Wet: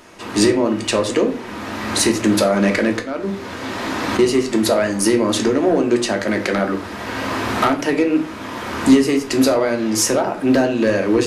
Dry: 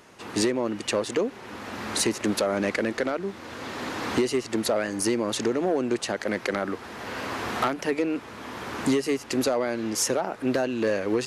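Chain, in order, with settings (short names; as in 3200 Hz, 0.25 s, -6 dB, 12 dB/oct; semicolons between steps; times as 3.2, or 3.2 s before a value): 2.92–4.19 auto swell 0.252 s; on a send: reverb RT60 0.40 s, pre-delay 3 ms, DRR 3 dB; on the sum: gain +6.5 dB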